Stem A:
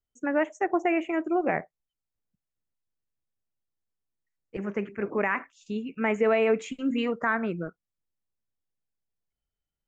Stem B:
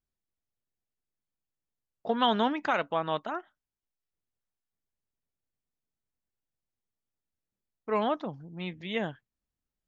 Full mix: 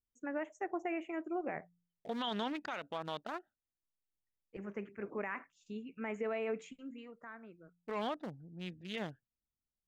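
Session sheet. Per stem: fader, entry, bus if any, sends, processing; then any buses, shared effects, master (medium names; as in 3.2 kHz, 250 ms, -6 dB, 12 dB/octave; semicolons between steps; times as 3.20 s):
6.58 s -12 dB -> 7.04 s -24 dB, 0.00 s, no send, de-hum 58.02 Hz, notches 3
-6.5 dB, 0.00 s, no send, local Wiener filter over 41 samples; treble shelf 2.7 kHz +11.5 dB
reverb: none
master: peak limiter -28.5 dBFS, peak gain reduction 11 dB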